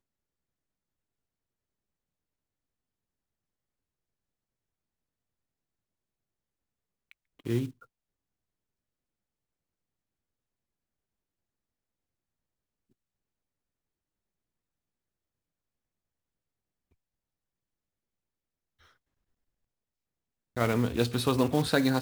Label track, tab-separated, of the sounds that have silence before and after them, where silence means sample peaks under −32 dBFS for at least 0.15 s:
7.460000	7.660000	sound